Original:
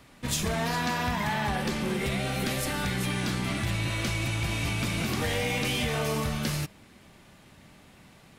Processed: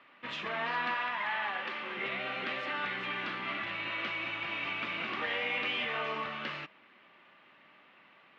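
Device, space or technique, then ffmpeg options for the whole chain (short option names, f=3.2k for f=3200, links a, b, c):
phone earpiece: -filter_complex "[0:a]asettb=1/sr,asplit=3[a][b][c];[a]atrim=end=0.944[d];[b]atrim=start=0.94:end=1.97,asetpts=PTS-STARTPTS,afade=t=in:d=0.004:c=qsin,afade=t=out:st=1.026:d=0.004:c=qsin,lowshelf=f=370:g=-10.5[e];[c]atrim=start=1.966[f];[d][e]acrossfade=d=0.004:c1=hsin:c2=qsin[g];[g][f]acrossfade=d=0.004:c1=qsin:c2=hsin,lowpass=11k,highpass=440,equalizer=f=450:t=q:w=4:g=-4,equalizer=f=740:t=q:w=4:g=-4,equalizer=f=1.2k:t=q:w=4:g=5,equalizer=f=1.9k:t=q:w=4:g=3,equalizer=f=2.8k:t=q:w=4:g=4,lowpass=f=3.1k:w=0.5412,lowpass=f=3.1k:w=1.3066,volume=-3dB"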